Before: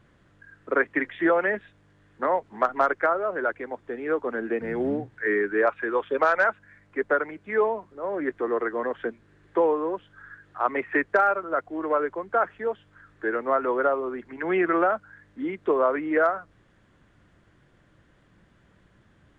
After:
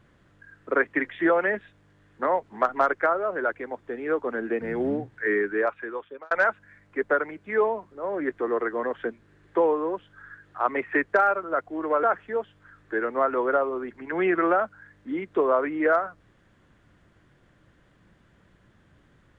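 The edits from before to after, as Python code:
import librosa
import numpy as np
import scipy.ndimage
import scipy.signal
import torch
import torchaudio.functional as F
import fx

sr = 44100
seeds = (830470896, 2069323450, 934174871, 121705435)

y = fx.edit(x, sr, fx.fade_out_span(start_s=5.38, length_s=0.93),
    fx.cut(start_s=12.03, length_s=0.31), tone=tone)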